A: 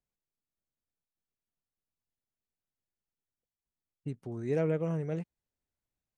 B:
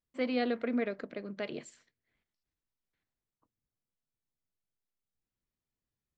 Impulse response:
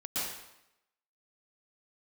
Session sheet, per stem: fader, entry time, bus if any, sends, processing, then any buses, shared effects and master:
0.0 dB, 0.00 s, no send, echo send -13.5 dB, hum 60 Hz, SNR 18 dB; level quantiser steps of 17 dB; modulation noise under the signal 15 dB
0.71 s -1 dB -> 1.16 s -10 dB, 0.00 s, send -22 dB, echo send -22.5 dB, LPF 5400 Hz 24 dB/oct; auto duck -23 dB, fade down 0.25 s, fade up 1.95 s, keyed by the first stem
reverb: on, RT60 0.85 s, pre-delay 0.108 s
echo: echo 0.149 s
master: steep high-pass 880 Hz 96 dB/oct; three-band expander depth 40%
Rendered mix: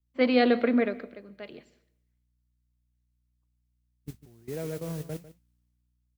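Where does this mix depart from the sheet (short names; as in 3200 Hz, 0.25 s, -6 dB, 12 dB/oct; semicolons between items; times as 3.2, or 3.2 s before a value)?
stem B -1.0 dB -> +5.5 dB; master: missing steep high-pass 880 Hz 96 dB/oct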